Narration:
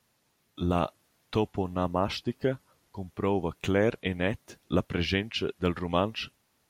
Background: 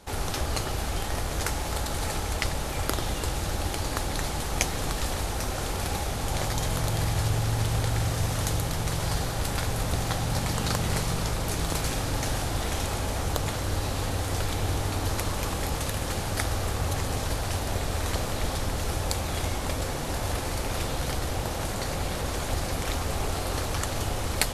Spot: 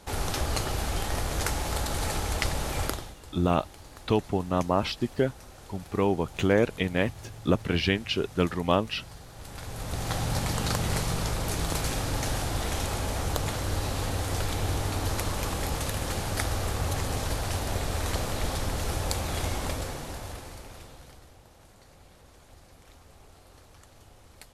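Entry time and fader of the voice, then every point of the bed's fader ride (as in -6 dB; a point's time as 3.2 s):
2.75 s, +2.5 dB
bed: 2.85 s 0 dB
3.16 s -18 dB
9.26 s -18 dB
10.17 s -1 dB
19.64 s -1 dB
21.39 s -24.5 dB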